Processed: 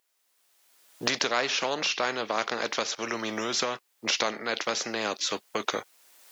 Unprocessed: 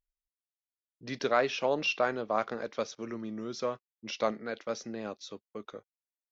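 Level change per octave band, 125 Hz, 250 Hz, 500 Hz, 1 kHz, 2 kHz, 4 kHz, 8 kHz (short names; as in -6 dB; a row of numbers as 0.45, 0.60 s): -0.5 dB, +1.5 dB, 0.0 dB, +3.5 dB, +7.0 dB, +12.0 dB, n/a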